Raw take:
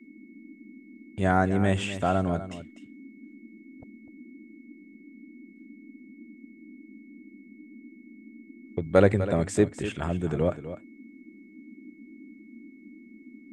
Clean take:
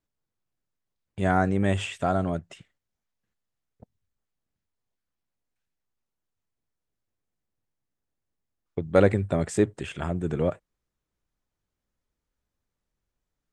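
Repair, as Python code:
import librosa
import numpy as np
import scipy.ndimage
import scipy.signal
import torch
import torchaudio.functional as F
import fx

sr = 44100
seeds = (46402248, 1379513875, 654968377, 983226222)

y = fx.notch(x, sr, hz=2200.0, q=30.0)
y = fx.noise_reduce(y, sr, print_start_s=11.06, print_end_s=11.56, reduce_db=30.0)
y = fx.fix_echo_inverse(y, sr, delay_ms=250, level_db=-12.5)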